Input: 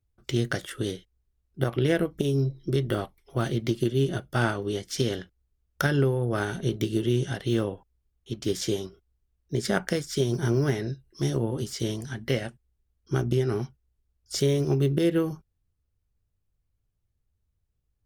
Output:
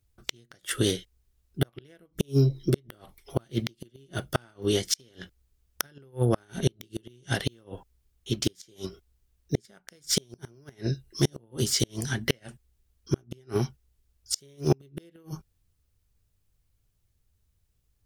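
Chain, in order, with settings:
high-shelf EQ 2,300 Hz +7.5 dB
gate with flip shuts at −15 dBFS, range −36 dB
level +4.5 dB

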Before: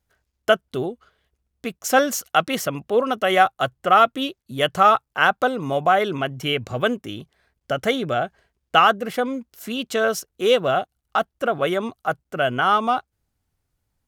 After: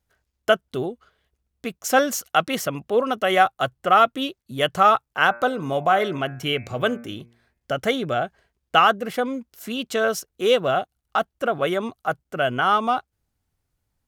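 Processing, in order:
0:05.27–0:07.75: hum removal 117.7 Hz, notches 22
level −1 dB

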